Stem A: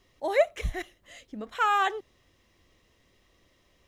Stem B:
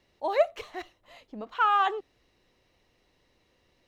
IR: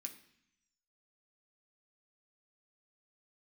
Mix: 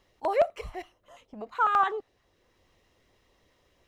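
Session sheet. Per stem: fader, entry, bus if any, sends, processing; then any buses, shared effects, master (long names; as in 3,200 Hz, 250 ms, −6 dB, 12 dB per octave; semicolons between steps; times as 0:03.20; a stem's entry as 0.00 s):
−3.5 dB, 0.00 s, no send, brickwall limiter −21 dBFS, peak gain reduction 10 dB; automatic ducking −8 dB, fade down 0.75 s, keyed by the second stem
−5.5 dB, 0.00 s, no send, flat-topped bell 820 Hz +8.5 dB 2.4 octaves; notch on a step sequencer 12 Hz 330–3,100 Hz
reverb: not used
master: no processing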